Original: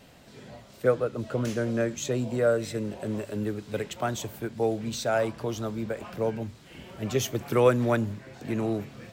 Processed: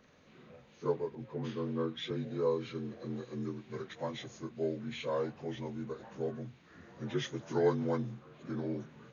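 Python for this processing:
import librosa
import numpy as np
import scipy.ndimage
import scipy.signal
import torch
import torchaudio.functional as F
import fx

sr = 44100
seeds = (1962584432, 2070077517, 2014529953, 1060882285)

y = fx.partial_stretch(x, sr, pct=80)
y = fx.band_widen(y, sr, depth_pct=40, at=(1.15, 2.11))
y = F.gain(torch.from_numpy(y), -7.5).numpy()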